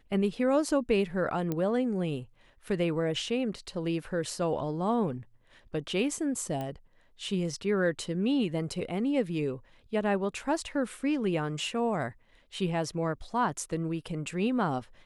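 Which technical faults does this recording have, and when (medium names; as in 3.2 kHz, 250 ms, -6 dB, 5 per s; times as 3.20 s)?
1.52 s: pop -18 dBFS
6.61 s: pop -23 dBFS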